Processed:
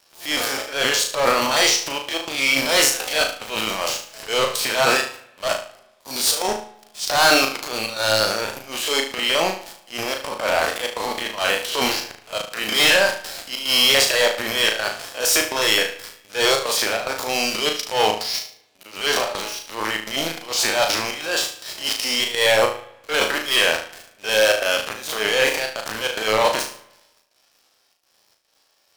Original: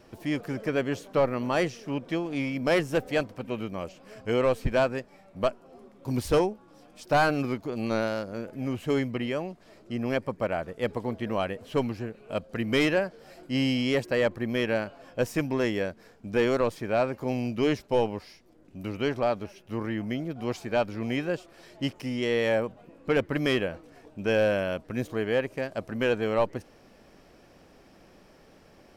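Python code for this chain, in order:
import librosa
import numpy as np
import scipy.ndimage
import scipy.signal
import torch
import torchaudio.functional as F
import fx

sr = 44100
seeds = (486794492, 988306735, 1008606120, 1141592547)

y = fx.spec_steps(x, sr, hold_ms=50)
y = scipy.signal.sosfilt(scipy.signal.butter(2, 940.0, 'highpass', fs=sr, output='sos'), y)
y = fx.high_shelf_res(y, sr, hz=2900.0, db=7.5, q=1.5)
y = fx.leveller(y, sr, passes=5)
y = fx.step_gate(y, sr, bpm=145, pattern='xxxxxx.xxx.', floor_db=-24.0, edge_ms=4.5)
y = fx.transient(y, sr, attack_db=-11, sustain_db=8)
y = fx.room_flutter(y, sr, wall_m=6.3, rt60_s=0.41)
y = fx.rev_spring(y, sr, rt60_s=1.0, pass_ms=(46, 59), chirp_ms=50, drr_db=17.5)
y = F.gain(torch.from_numpy(y), 2.5).numpy()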